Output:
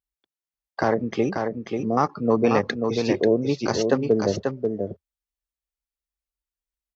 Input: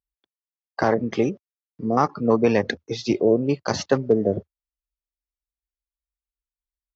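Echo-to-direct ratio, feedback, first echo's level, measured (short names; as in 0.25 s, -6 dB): -5.0 dB, no steady repeat, -5.0 dB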